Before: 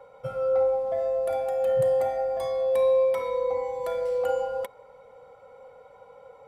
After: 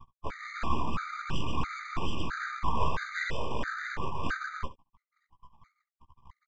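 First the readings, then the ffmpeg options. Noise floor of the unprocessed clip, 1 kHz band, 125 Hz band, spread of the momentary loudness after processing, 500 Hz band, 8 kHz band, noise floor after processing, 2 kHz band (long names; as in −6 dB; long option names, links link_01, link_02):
−52 dBFS, −0.5 dB, +7.0 dB, 7 LU, −21.5 dB, can't be measured, below −85 dBFS, +10.5 dB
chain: -filter_complex "[0:a]afftfilt=real='re*gte(hypot(re,im),0.0398)':imag='im*gte(hypot(re,im),0.0398)':win_size=1024:overlap=0.75,aecho=1:1:1.1:0.66,asplit=2[link_01][link_02];[link_02]adynamicsmooth=sensitivity=6.5:basefreq=920,volume=1dB[link_03];[link_01][link_03]amix=inputs=2:normalize=0,asplit=2[link_04][link_05];[link_05]highpass=frequency=720:poles=1,volume=21dB,asoftclip=type=tanh:threshold=-10.5dB[link_06];[link_04][link_06]amix=inputs=2:normalize=0,lowpass=frequency=2700:poles=1,volume=-6dB,afftfilt=real='hypot(re,im)*cos(2*PI*random(0))':imag='hypot(re,im)*sin(2*PI*random(1))':win_size=512:overlap=0.75,acrossover=split=690[link_07][link_08];[link_07]aeval=exprs='val(0)*(1-0.5/2+0.5/2*cos(2*PI*1.1*n/s))':channel_layout=same[link_09];[link_08]aeval=exprs='val(0)*(1-0.5/2-0.5/2*cos(2*PI*1.1*n/s))':channel_layout=same[link_10];[link_09][link_10]amix=inputs=2:normalize=0,flanger=delay=15.5:depth=2.7:speed=0.47,aresample=16000,aeval=exprs='abs(val(0))':channel_layout=same,aresample=44100,aecho=1:1:13|69:0.237|0.158,afftfilt=real='re*gt(sin(2*PI*1.5*pts/sr)*(1-2*mod(floor(b*sr/1024/1200),2)),0)':imag='im*gt(sin(2*PI*1.5*pts/sr)*(1-2*mod(floor(b*sr/1024/1200),2)),0)':win_size=1024:overlap=0.75,volume=2dB"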